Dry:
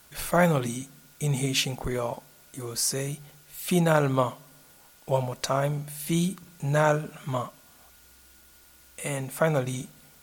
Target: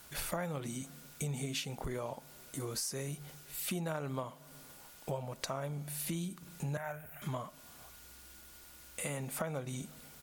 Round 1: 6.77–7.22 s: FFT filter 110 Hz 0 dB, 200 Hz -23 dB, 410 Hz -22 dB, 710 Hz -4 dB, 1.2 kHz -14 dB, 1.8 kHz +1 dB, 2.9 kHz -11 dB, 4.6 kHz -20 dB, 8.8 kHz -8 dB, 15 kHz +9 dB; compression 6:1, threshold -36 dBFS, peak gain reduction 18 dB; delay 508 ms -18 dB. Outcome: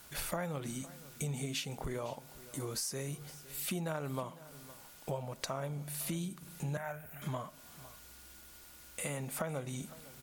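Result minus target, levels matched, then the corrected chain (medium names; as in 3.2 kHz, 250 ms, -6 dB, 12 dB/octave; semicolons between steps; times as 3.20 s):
echo-to-direct +11.5 dB
6.77–7.22 s: FFT filter 110 Hz 0 dB, 200 Hz -23 dB, 410 Hz -22 dB, 710 Hz -4 dB, 1.2 kHz -14 dB, 1.8 kHz +1 dB, 2.9 kHz -11 dB, 4.6 kHz -20 dB, 8.8 kHz -8 dB, 15 kHz +9 dB; compression 6:1, threshold -36 dBFS, peak gain reduction 18 dB; delay 508 ms -29.5 dB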